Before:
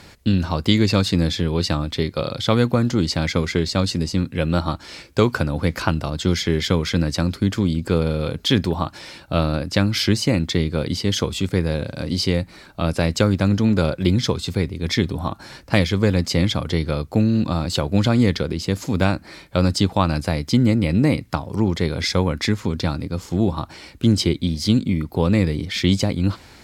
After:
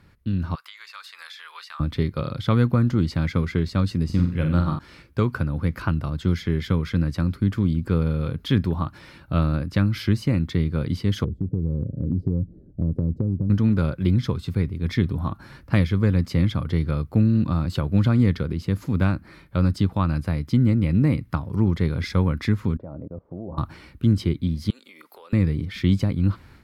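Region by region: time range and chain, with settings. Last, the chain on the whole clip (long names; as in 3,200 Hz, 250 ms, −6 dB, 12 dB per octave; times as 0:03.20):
0:00.55–0:01.80: inverse Chebyshev high-pass filter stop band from 240 Hz, stop band 70 dB + downward compressor 4 to 1, threshold −30 dBFS
0:04.05–0:04.79: de-essing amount 45% + flutter between parallel walls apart 7.8 metres, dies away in 0.5 s
0:11.24–0:13.50: inverse Chebyshev low-pass filter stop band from 980 Hz + downward compressor, threshold −19 dBFS
0:22.77–0:23.58: low-shelf EQ 200 Hz −11 dB + output level in coarse steps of 18 dB + low-pass with resonance 610 Hz, resonance Q 4.5
0:24.70–0:25.33: high-pass filter 490 Hz 24 dB per octave + high-shelf EQ 2,000 Hz +10 dB + downward compressor 10 to 1, threshold −34 dBFS
whole clip: drawn EQ curve 140 Hz 0 dB, 760 Hz −12 dB, 1,200 Hz −4 dB, 7,400 Hz −19 dB, 11,000 Hz −10 dB; automatic gain control; level −6.5 dB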